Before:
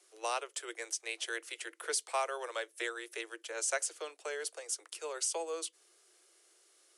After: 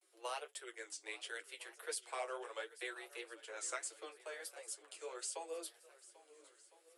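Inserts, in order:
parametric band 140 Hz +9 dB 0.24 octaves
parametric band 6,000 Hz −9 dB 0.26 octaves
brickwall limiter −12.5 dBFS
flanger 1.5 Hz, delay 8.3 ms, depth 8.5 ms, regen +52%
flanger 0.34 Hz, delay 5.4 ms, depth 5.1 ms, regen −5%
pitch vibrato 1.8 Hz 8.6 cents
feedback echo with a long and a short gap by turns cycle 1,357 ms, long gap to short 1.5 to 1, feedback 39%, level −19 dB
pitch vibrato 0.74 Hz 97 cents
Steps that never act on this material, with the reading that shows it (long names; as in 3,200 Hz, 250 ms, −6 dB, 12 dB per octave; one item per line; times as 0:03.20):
parametric band 140 Hz: nothing at its input below 290 Hz
brickwall limiter −12.5 dBFS: peak of its input −20.5 dBFS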